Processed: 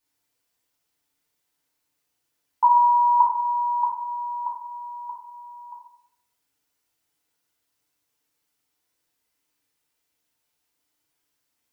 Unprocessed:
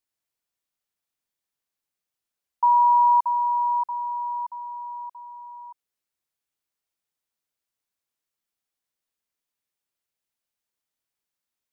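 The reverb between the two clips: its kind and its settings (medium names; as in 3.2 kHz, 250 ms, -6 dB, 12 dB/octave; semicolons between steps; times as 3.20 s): FDN reverb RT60 0.7 s, low-frequency decay 1.05×, high-frequency decay 0.85×, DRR -5.5 dB; trim +3.5 dB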